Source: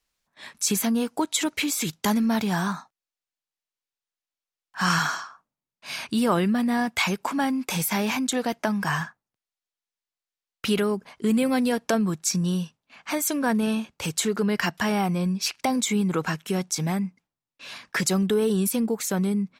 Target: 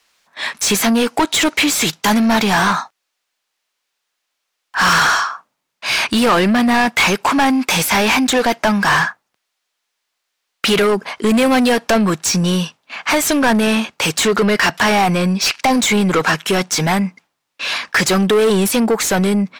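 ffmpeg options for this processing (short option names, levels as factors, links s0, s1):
-filter_complex "[0:a]asplit=2[s0][s1];[s1]highpass=f=720:p=1,volume=17.8,asoftclip=type=tanh:threshold=0.376[s2];[s0][s2]amix=inputs=2:normalize=0,lowpass=f=4400:p=1,volume=0.501,volume=1.41"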